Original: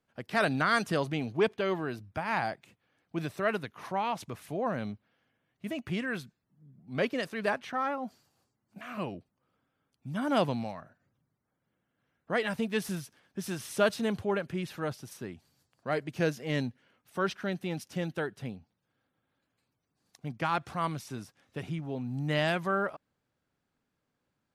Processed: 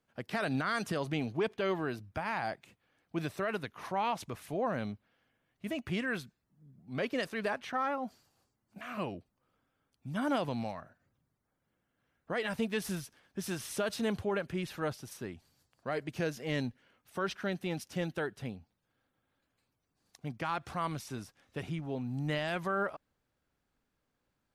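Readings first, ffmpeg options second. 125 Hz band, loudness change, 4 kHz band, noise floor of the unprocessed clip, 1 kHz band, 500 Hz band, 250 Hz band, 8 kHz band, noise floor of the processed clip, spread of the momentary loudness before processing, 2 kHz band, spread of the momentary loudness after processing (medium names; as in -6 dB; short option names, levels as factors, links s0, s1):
-3.0 dB, -3.5 dB, -3.0 dB, -82 dBFS, -3.5 dB, -3.5 dB, -2.5 dB, -0.5 dB, -82 dBFS, 15 LU, -4.0 dB, 12 LU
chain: -af "asubboost=boost=3:cutoff=66,alimiter=limit=0.0708:level=0:latency=1:release=86"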